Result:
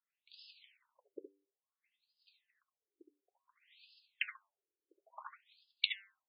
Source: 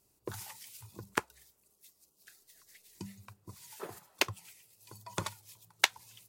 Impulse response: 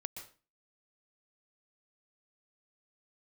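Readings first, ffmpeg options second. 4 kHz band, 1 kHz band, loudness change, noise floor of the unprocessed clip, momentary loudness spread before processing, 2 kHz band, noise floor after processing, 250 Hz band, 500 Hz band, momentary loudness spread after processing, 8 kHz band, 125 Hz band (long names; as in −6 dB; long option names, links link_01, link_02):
−4.5 dB, −16.0 dB, −3.5 dB, −72 dBFS, 23 LU, −8.0 dB, below −85 dBFS, −17.0 dB, −15.5 dB, 22 LU, below −40 dB, below −40 dB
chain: -filter_complex "[0:a]tiltshelf=frequency=1500:gain=-4.5,bandreject=frequency=98.12:width_type=h:width=4,bandreject=frequency=196.24:width_type=h:width=4,bandreject=frequency=294.36:width_type=h:width=4,bandreject=frequency=392.48:width_type=h:width=4,bandreject=frequency=490.6:width_type=h:width=4,bandreject=frequency=588.72:width_type=h:width=4,bandreject=frequency=686.84:width_type=h:width=4,bandreject=frequency=784.96:width_type=h:width=4,bandreject=frequency=883.08:width_type=h:width=4,bandreject=frequency=981.2:width_type=h:width=4,bandreject=frequency=1079.32:width_type=h:width=4,bandreject=frequency=1177.44:width_type=h:width=4,bandreject=frequency=1275.56:width_type=h:width=4,bandreject=frequency=1373.68:width_type=h:width=4,bandreject=frequency=1471.8:width_type=h:width=4,bandreject=frequency=1569.92:width_type=h:width=4,bandreject=frequency=1668.04:width_type=h:width=4,bandreject=frequency=1766.16:width_type=h:width=4,bandreject=frequency=1864.28:width_type=h:width=4,bandreject=frequency=1962.4:width_type=h:width=4,bandreject=frequency=2060.52:width_type=h:width=4,bandreject=frequency=2158.64:width_type=h:width=4,bandreject=frequency=2256.76:width_type=h:width=4,bandreject=frequency=2354.88:width_type=h:width=4,bandreject=frequency=2453:width_type=h:width=4,bandreject=frequency=2551.12:width_type=h:width=4,bandreject=frequency=2649.24:width_type=h:width=4,bandreject=frequency=2747.36:width_type=h:width=4,bandreject=frequency=2845.48:width_type=h:width=4,bandreject=frequency=2943.6:width_type=h:width=4,bandreject=frequency=3041.72:width_type=h:width=4,bandreject=frequency=3139.84:width_type=h:width=4,bandreject=frequency=3237.96:width_type=h:width=4,bandreject=frequency=3336.08:width_type=h:width=4,bandreject=frequency=3434.2:width_type=h:width=4,bandreject=frequency=3532.32:width_type=h:width=4,bandreject=frequency=3630.44:width_type=h:width=4,acrossover=split=380|1100|2400[link_01][link_02][link_03][link_04];[link_02]aeval=exprs='val(0)*gte(abs(val(0)),0.00266)':channel_layout=same[link_05];[link_01][link_05][link_03][link_04]amix=inputs=4:normalize=0[link_06];[1:a]atrim=start_sample=2205,afade=type=out:start_time=0.2:duration=0.01,atrim=end_sample=9261,asetrate=79380,aresample=44100[link_07];[link_06][link_07]afir=irnorm=-1:irlink=0,afftfilt=real='re*between(b*sr/1024,370*pow(3700/370,0.5+0.5*sin(2*PI*0.57*pts/sr))/1.41,370*pow(3700/370,0.5+0.5*sin(2*PI*0.57*pts/sr))*1.41)':imag='im*between(b*sr/1024,370*pow(3700/370,0.5+0.5*sin(2*PI*0.57*pts/sr))/1.41,370*pow(3700/370,0.5+0.5*sin(2*PI*0.57*pts/sr))*1.41)':win_size=1024:overlap=0.75,volume=2.5dB"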